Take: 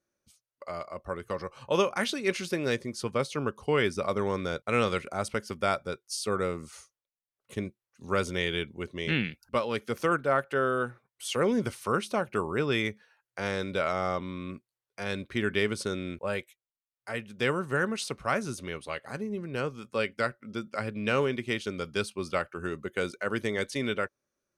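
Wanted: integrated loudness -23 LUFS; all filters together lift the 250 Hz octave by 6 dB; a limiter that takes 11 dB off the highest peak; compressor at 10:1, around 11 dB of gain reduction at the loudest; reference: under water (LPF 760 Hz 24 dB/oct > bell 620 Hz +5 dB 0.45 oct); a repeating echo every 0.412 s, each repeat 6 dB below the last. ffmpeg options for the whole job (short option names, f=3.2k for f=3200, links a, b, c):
-af "equalizer=f=250:t=o:g=7.5,acompressor=threshold=-29dB:ratio=10,alimiter=level_in=5dB:limit=-24dB:level=0:latency=1,volume=-5dB,lowpass=f=760:w=0.5412,lowpass=f=760:w=1.3066,equalizer=f=620:t=o:w=0.45:g=5,aecho=1:1:412|824|1236|1648|2060|2472:0.501|0.251|0.125|0.0626|0.0313|0.0157,volume=16.5dB"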